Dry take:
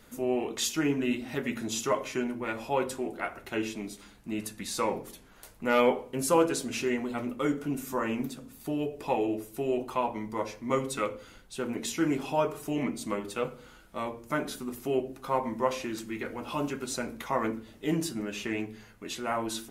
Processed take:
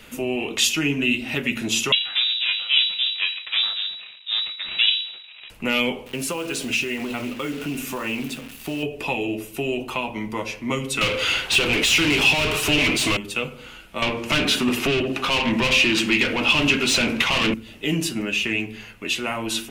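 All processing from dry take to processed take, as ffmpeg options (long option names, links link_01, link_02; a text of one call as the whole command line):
ffmpeg -i in.wav -filter_complex "[0:a]asettb=1/sr,asplit=3[link_01][link_02][link_03];[link_01]atrim=end=1.924[link_04];[link_02]atrim=start=1.92:end=5.5,asetpts=PTS-STARTPTS,afade=type=in:duration=0.004:curve=qsin,afade=type=out:start_time=3.576:duration=0.004:curve=qsin,aeval=exprs='max(val(0),0)':channel_layout=same,lowpass=frequency=3300:width_type=q:width=0.5098,lowpass=frequency=3300:width_type=q:width=0.6013,lowpass=frequency=3300:width_type=q:width=0.9,lowpass=frequency=3300:width_type=q:width=2.563,afreqshift=-3900[link_05];[link_03]atrim=start=5.496[link_06];[link_04][link_05]acrossfade=duration=0.004:curve1=hsin:curve2=qsin[link_07];[link_07][link_06]acrossfade=duration=0.004:curve1=qsin:curve2=hsin,asettb=1/sr,asplit=3[link_08][link_09][link_10];[link_08]atrim=end=6.064[link_11];[link_09]atrim=start=6.06:end=8.83,asetpts=PTS-STARTPTS,afade=type=in:duration=0.004:curve=qsin,afade=type=out:start_time=2.766:duration=0.004:curve=qsin,acompressor=threshold=-33dB:ratio=3:attack=3.2:release=140:knee=1:detection=peak,acrusher=bits=9:dc=4:mix=0:aa=0.000001[link_12];[link_10]atrim=start=8.826[link_13];[link_11][link_12]acrossfade=duration=0.004:curve1=hsin:curve2=qsin[link_14];[link_14][link_13]acrossfade=duration=0.004:curve1=qsin:curve2=hsin,asettb=1/sr,asplit=3[link_15][link_16][link_17];[link_15]atrim=end=11.014[link_18];[link_16]atrim=start=11.01:end=13.17,asetpts=PTS-STARTPTS,afade=type=in:duration=0.004:curve=qsin,afade=type=out:start_time=2.156:duration=0.004:curve=qsin,equalizer=frequency=220:width_type=o:width=0.64:gain=-14,asplit=2[link_19][link_20];[link_20]highpass=frequency=720:poles=1,volume=36dB,asoftclip=type=tanh:threshold=-14.5dB[link_21];[link_19][link_21]amix=inputs=2:normalize=0,lowpass=frequency=1900:poles=1,volume=-6dB[link_22];[link_17]atrim=start=13.166[link_23];[link_18][link_22]acrossfade=duration=0.004:curve1=hsin:curve2=qsin[link_24];[link_24][link_23]acrossfade=duration=0.004:curve1=qsin:curve2=hsin,asettb=1/sr,asplit=3[link_25][link_26][link_27];[link_25]atrim=end=14.024[link_28];[link_26]atrim=start=14.02:end=17.54,asetpts=PTS-STARTPTS,afade=type=in:duration=0.004:curve=qsin,afade=type=out:start_time=3.516:duration=0.004:curve=qsin,highshelf=frequency=5700:gain=-9.5,asplit=2[link_29][link_30];[link_30]highpass=frequency=720:poles=1,volume=29dB,asoftclip=type=tanh:threshold=-13.5dB[link_31];[link_29][link_31]amix=inputs=2:normalize=0,lowpass=frequency=2700:poles=1,volume=-6dB[link_32];[link_27]atrim=start=17.536[link_33];[link_28][link_32]acrossfade=duration=0.004:curve1=hsin:curve2=qsin[link_34];[link_34][link_33]acrossfade=duration=0.004:curve1=qsin:curve2=hsin,equalizer=frequency=2700:width_type=o:width=0.62:gain=14,acrossover=split=250|3000[link_35][link_36][link_37];[link_36]acompressor=threshold=-34dB:ratio=6[link_38];[link_35][link_38][link_37]amix=inputs=3:normalize=0,volume=8dB" out.wav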